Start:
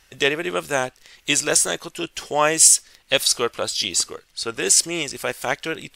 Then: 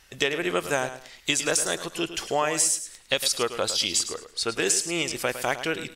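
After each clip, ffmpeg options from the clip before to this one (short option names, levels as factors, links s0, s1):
-filter_complex "[0:a]acompressor=threshold=0.1:ratio=10,asplit=2[s0][s1];[s1]aecho=0:1:107|214|321:0.266|0.0665|0.0166[s2];[s0][s2]amix=inputs=2:normalize=0"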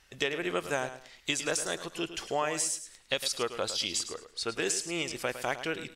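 -af "highshelf=f=8800:g=-7,volume=0.531"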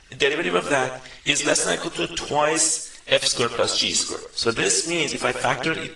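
-af "aphaser=in_gain=1:out_gain=1:delay=4.7:decay=0.46:speed=0.89:type=triangular,volume=2.82" -ar 22050 -c:a aac -b:a 32k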